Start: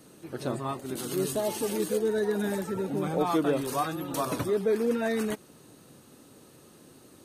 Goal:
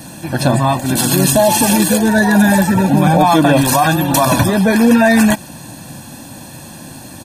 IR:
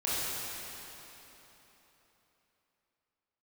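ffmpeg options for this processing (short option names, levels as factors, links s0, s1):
-af "aecho=1:1:1.2:0.87,alimiter=level_in=10.6:limit=0.891:release=50:level=0:latency=1,volume=0.891"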